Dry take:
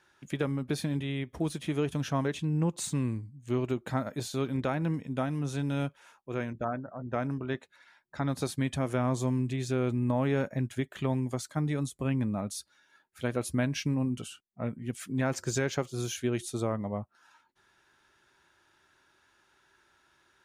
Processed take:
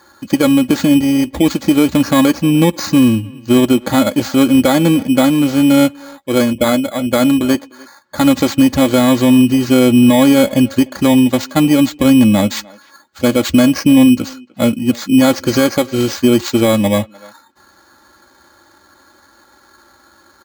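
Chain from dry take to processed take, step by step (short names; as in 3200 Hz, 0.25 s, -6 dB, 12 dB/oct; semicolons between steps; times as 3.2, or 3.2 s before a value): FFT order left unsorted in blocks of 16 samples; HPF 63 Hz; notch 2700 Hz, Q 25; comb 3.6 ms, depth 73%; careless resampling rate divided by 4×, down filtered, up hold; speakerphone echo 0.3 s, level -23 dB; maximiser +21 dB; gain -1 dB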